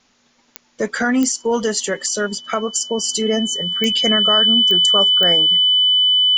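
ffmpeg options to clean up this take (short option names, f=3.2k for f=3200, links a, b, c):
-af "adeclick=t=4,bandreject=f=3k:w=30,agate=range=-21dB:threshold=-51dB"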